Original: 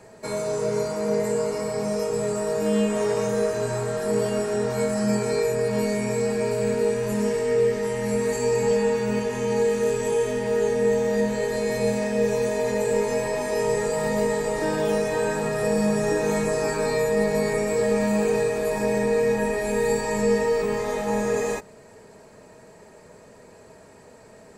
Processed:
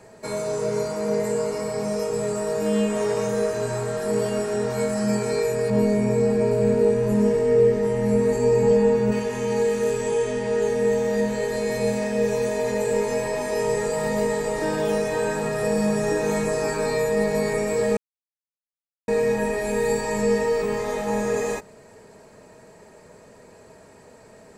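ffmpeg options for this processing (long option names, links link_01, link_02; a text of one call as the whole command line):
ffmpeg -i in.wav -filter_complex "[0:a]asettb=1/sr,asplit=3[link_01][link_02][link_03];[link_01]atrim=end=5.704[link_04];[link_02]atrim=start=5.7:end=9.12,asetpts=PTS-STARTPTS,afade=type=in:duration=0.004:curve=qsin,afade=type=out:start_time=3.416:duration=0.004:curve=qsin,tiltshelf=frequency=970:gain=6[link_05];[link_03]atrim=start=9.116[link_06];[link_04][link_05]acrossfade=duration=0.004:curve1=hsin:curve2=qsin[link_07];[link_07][link_06]acrossfade=duration=0.004:curve1=qsin:curve2=hsin,asettb=1/sr,asplit=3[link_08][link_09][link_10];[link_08]atrim=end=10.034[link_11];[link_09]atrim=start=10.03:end=10.62,asetpts=PTS-STARTPTS,afade=type=in:duration=0.004:curve=qsin,afade=type=out:start_time=0.586:duration=0.004:curve=qsin,lowpass=frequency=9400:width=0.5412,lowpass=frequency=9400:width=1.3066[link_12];[link_10]atrim=start=10.616[link_13];[link_11][link_12]acrossfade=duration=0.004:curve1=hsin:curve2=qsin[link_14];[link_14][link_13]acrossfade=duration=0.004:curve1=qsin:curve2=hsin,asplit=3[link_15][link_16][link_17];[link_15]atrim=end=17.97,asetpts=PTS-STARTPTS,afade=type=out:start_time=17.966:duration=0.004:curve=hsin[link_18];[link_16]atrim=start=17.97:end=19.08,asetpts=PTS-STARTPTS,volume=0[link_19];[link_17]atrim=start=19.08,asetpts=PTS-STARTPTS,afade=type=in:duration=0.004:curve=hsin[link_20];[link_18][link_19][link_20]concat=n=3:v=0:a=1" out.wav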